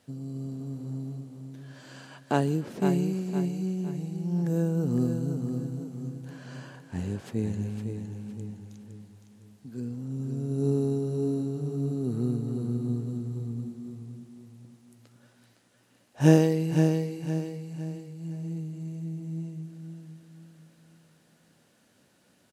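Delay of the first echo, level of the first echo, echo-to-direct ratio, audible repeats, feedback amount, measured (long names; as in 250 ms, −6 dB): 511 ms, −7.0 dB, −6.5 dB, 4, 38%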